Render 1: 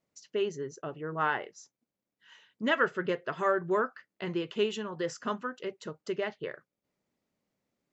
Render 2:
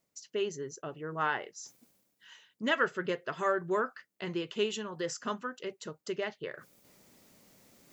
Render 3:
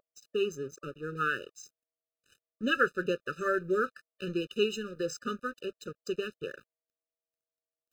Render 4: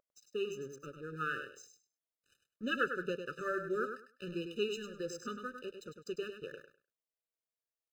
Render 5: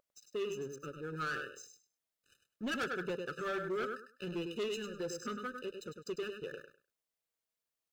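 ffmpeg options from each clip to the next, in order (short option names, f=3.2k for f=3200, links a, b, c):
-af "highshelf=f=5k:g=11.5,areverse,acompressor=mode=upward:threshold=-40dB:ratio=2.5,areverse,volume=-2.5dB"
-af "aeval=exprs='sgn(val(0))*max(abs(val(0))-0.00299,0)':c=same,aeval=exprs='val(0)+0.00158*sin(2*PI*650*n/s)':c=same,afftfilt=real='re*eq(mod(floor(b*sr/1024/600),2),0)':imag='im*eq(mod(floor(b*sr/1024/600),2),0)':win_size=1024:overlap=0.75,volume=3.5dB"
-af "aecho=1:1:101|202|303:0.422|0.0801|0.0152,volume=-7dB"
-af "asoftclip=type=tanh:threshold=-35.5dB,volume=3.5dB"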